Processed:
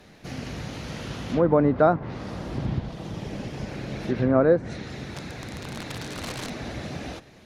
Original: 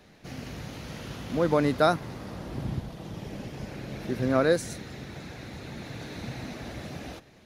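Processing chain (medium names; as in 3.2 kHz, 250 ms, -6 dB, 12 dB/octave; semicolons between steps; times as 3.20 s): 5.16–6.50 s: integer overflow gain 31.5 dB; low-pass that closes with the level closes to 1.1 kHz, closed at -21 dBFS; trim +4.5 dB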